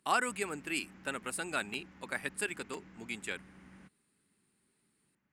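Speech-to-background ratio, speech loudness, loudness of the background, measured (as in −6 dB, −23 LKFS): 19.0 dB, −37.5 LKFS, −56.5 LKFS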